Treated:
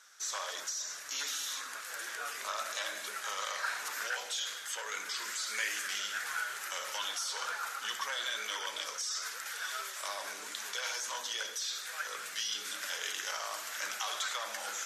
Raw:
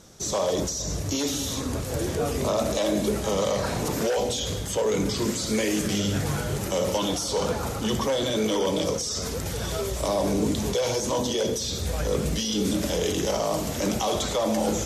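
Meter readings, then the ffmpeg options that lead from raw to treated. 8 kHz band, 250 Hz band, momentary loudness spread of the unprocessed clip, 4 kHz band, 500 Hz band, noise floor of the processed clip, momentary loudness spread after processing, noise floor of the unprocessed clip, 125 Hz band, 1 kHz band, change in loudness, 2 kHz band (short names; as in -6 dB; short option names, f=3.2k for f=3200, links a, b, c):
-6.5 dB, -36.5 dB, 4 LU, -5.5 dB, -24.0 dB, -44 dBFS, 4 LU, -31 dBFS, under -40 dB, -8.0 dB, -10.0 dB, +1.0 dB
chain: -af "highpass=f=1.5k:t=q:w=3.5,volume=-7dB"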